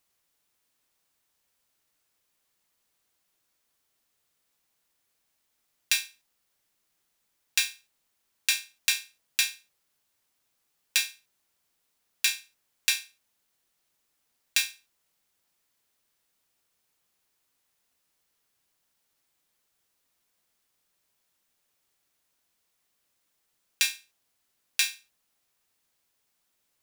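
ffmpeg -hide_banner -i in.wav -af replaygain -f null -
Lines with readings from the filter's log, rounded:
track_gain = +16.7 dB
track_peak = 0.561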